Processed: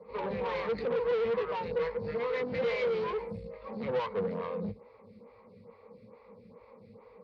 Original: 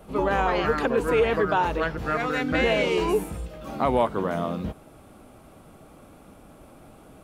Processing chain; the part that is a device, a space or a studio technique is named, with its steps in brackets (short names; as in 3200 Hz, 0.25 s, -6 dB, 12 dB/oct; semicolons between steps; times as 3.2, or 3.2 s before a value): ripple EQ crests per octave 0.92, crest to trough 17 dB; vibe pedal into a guitar amplifier (photocell phaser 2.3 Hz; tube stage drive 27 dB, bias 0.4; speaker cabinet 81–4300 Hz, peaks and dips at 170 Hz +9 dB, 270 Hz -8 dB, 490 Hz +8 dB); gain -5.5 dB